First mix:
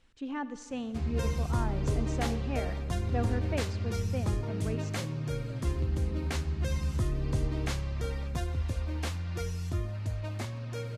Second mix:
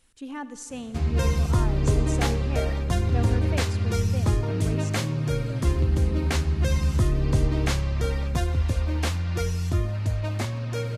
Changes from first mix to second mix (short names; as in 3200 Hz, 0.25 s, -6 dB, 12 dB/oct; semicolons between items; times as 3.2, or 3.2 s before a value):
speech: remove air absorption 130 m; background +8.0 dB